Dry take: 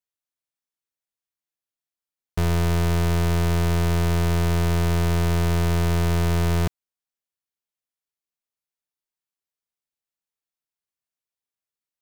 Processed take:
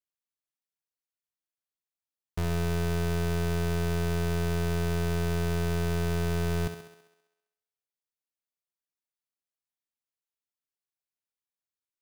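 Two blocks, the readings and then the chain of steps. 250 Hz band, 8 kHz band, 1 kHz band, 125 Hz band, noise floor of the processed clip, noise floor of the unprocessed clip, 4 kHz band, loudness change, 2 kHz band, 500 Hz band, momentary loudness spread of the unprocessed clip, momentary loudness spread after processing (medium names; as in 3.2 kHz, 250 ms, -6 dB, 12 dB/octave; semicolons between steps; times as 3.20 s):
-6.0 dB, -6.5 dB, -8.0 dB, -8.0 dB, under -85 dBFS, under -85 dBFS, -6.5 dB, -7.0 dB, -5.5 dB, -3.5 dB, 2 LU, 3 LU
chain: thinning echo 66 ms, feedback 63%, high-pass 150 Hz, level -8 dB; trim -7.5 dB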